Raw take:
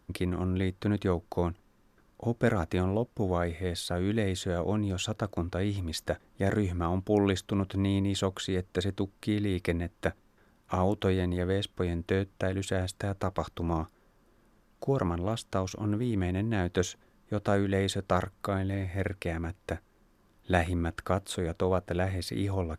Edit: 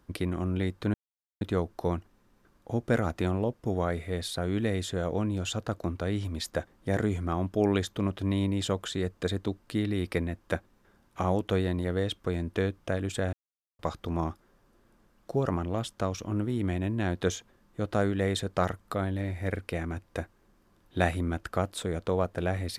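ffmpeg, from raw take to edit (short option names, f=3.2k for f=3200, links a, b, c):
-filter_complex "[0:a]asplit=4[a][b][c][d];[a]atrim=end=0.94,asetpts=PTS-STARTPTS,afade=t=out:st=0.936:d=0.004:c=hsin,apad=pad_dur=0.47[e];[b]atrim=start=0.94:end=12.86,asetpts=PTS-STARTPTS,afade=t=in:d=0.004:c=hsin,afade=t=out:st=11.916:d=0.004:c=hsin[f];[c]atrim=start=12.86:end=13.32,asetpts=PTS-STARTPTS,volume=0[g];[d]atrim=start=13.32,asetpts=PTS-STARTPTS,afade=t=in:d=0.004:c=hsin[h];[e][f][g][h]concat=n=4:v=0:a=1"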